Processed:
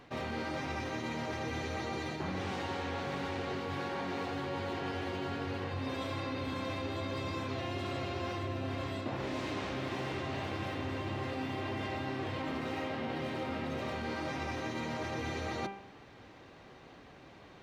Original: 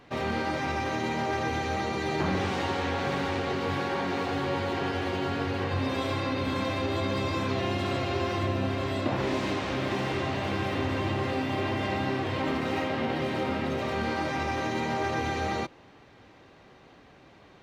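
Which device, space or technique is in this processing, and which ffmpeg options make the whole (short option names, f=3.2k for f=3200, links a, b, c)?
compression on the reversed sound: -af "bandreject=f=197.2:t=h:w=4,bandreject=f=394.4:t=h:w=4,bandreject=f=591.6:t=h:w=4,bandreject=f=788.8:t=h:w=4,bandreject=f=986:t=h:w=4,bandreject=f=1.1832k:t=h:w=4,bandreject=f=1.3804k:t=h:w=4,bandreject=f=1.5776k:t=h:w=4,bandreject=f=1.7748k:t=h:w=4,bandreject=f=1.972k:t=h:w=4,bandreject=f=2.1692k:t=h:w=4,bandreject=f=2.3664k:t=h:w=4,bandreject=f=2.5636k:t=h:w=4,bandreject=f=2.7608k:t=h:w=4,bandreject=f=2.958k:t=h:w=4,bandreject=f=3.1552k:t=h:w=4,bandreject=f=3.3524k:t=h:w=4,areverse,acompressor=threshold=-34dB:ratio=6,areverse"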